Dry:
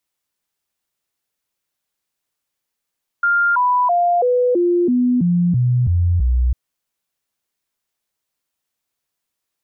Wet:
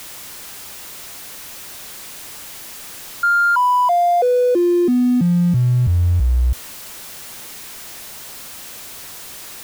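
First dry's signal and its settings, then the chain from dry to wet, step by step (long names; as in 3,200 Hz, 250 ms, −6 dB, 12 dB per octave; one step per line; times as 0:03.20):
stepped sweep 1,400 Hz down, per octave 2, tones 10, 0.33 s, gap 0.00 s −12.5 dBFS
converter with a step at zero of −28.5 dBFS
noise that follows the level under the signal 31 dB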